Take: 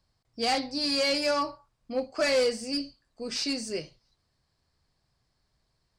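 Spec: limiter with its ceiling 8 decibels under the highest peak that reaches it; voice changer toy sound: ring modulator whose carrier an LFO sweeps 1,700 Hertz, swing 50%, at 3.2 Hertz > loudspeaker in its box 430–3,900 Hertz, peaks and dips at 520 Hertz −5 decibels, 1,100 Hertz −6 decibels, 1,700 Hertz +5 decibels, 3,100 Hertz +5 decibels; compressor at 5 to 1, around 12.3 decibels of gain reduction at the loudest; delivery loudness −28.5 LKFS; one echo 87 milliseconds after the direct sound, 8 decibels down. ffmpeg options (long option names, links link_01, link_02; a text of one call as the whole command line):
ffmpeg -i in.wav -af "acompressor=threshold=-36dB:ratio=5,alimiter=level_in=10.5dB:limit=-24dB:level=0:latency=1,volume=-10.5dB,aecho=1:1:87:0.398,aeval=exprs='val(0)*sin(2*PI*1700*n/s+1700*0.5/3.2*sin(2*PI*3.2*n/s))':channel_layout=same,highpass=430,equalizer=frequency=520:width_type=q:width=4:gain=-5,equalizer=frequency=1100:width_type=q:width=4:gain=-6,equalizer=frequency=1700:width_type=q:width=4:gain=5,equalizer=frequency=3100:width_type=q:width=4:gain=5,lowpass=frequency=3900:width=0.5412,lowpass=frequency=3900:width=1.3066,volume=14.5dB" out.wav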